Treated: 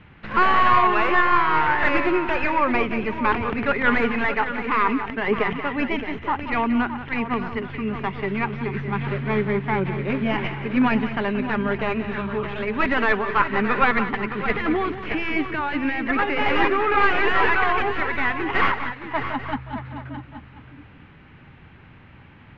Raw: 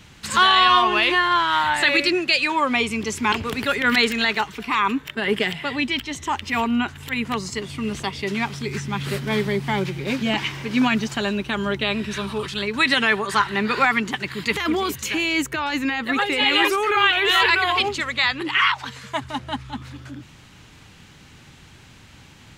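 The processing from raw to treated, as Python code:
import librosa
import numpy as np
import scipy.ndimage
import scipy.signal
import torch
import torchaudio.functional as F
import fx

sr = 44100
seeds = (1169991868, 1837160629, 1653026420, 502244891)

y = fx.tracing_dist(x, sr, depth_ms=0.33)
y = scipy.signal.sosfilt(scipy.signal.butter(4, 2400.0, 'lowpass', fs=sr, output='sos'), y)
y = fx.echo_multitap(y, sr, ms=(179, 619, 838), db=(-12.5, -10.5, -16.5))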